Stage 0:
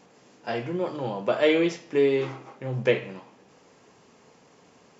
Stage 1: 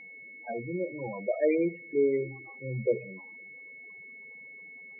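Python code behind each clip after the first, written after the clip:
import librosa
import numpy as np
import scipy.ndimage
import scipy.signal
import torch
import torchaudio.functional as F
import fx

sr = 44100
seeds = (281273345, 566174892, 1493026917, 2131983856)

y = scipy.signal.sosfilt(scipy.signal.butter(4, 94.0, 'highpass', fs=sr, output='sos'), x)
y = fx.spec_topn(y, sr, count=8)
y = y + 10.0 ** (-41.0 / 20.0) * np.sin(2.0 * np.pi * 2200.0 * np.arange(len(y)) / sr)
y = F.gain(torch.from_numpy(y), -4.0).numpy()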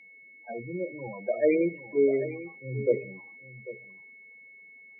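y = x + 10.0 ** (-11.5 / 20.0) * np.pad(x, (int(794 * sr / 1000.0), 0))[:len(x)]
y = fx.band_widen(y, sr, depth_pct=40)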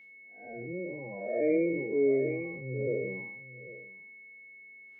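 y = fx.spec_blur(x, sr, span_ms=204.0)
y = fx.sustainer(y, sr, db_per_s=38.0)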